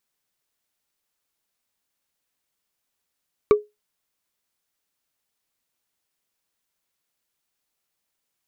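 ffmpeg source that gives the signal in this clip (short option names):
-f lavfi -i "aevalsrc='0.447*pow(10,-3*t/0.2)*sin(2*PI*419*t)+0.178*pow(10,-3*t/0.059)*sin(2*PI*1155.2*t)+0.0708*pow(10,-3*t/0.026)*sin(2*PI*2264.3*t)+0.0282*pow(10,-3*t/0.014)*sin(2*PI*3742.9*t)+0.0112*pow(10,-3*t/0.009)*sin(2*PI*5589.5*t)':d=0.45:s=44100"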